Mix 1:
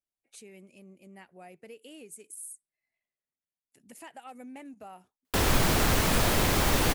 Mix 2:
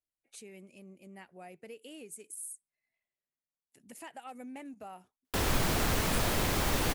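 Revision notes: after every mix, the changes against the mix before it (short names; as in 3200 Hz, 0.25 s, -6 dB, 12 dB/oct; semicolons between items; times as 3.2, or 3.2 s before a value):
background -5.0 dB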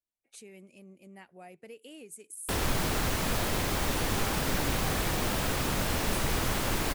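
background: entry -2.85 s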